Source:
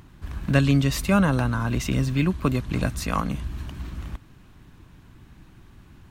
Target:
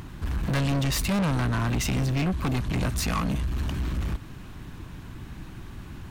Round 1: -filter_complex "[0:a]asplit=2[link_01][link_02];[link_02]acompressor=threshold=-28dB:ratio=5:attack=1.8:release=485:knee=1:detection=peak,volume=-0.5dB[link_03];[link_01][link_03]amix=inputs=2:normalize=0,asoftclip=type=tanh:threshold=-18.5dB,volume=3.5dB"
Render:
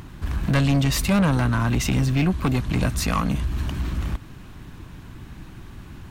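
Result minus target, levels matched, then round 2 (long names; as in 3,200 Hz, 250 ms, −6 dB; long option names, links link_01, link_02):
soft clipping: distortion −5 dB
-filter_complex "[0:a]asplit=2[link_01][link_02];[link_02]acompressor=threshold=-28dB:ratio=5:attack=1.8:release=485:knee=1:detection=peak,volume=-0.5dB[link_03];[link_01][link_03]amix=inputs=2:normalize=0,asoftclip=type=tanh:threshold=-26dB,volume=3.5dB"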